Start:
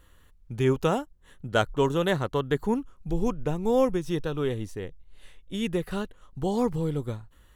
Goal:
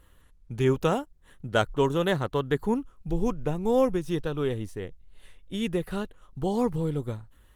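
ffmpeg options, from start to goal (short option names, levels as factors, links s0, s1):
-ar 48000 -c:a libopus -b:a 32k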